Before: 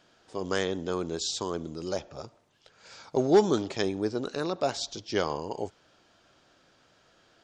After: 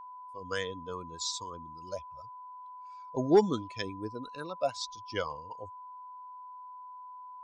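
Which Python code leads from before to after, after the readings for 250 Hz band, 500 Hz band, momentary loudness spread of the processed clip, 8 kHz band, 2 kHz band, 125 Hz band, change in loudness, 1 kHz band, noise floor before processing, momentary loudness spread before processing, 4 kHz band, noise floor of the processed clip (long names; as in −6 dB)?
−4.5 dB, −4.5 dB, 18 LU, −4.5 dB, −4.0 dB, −4.5 dB, −4.0 dB, −1.0 dB, −64 dBFS, 16 LU, −4.5 dB, −47 dBFS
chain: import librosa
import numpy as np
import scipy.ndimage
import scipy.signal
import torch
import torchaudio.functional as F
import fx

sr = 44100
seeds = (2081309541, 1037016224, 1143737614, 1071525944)

y = fx.bin_expand(x, sr, power=2.0)
y = y + 10.0 ** (-44.0 / 20.0) * np.sin(2.0 * np.pi * 1000.0 * np.arange(len(y)) / sr)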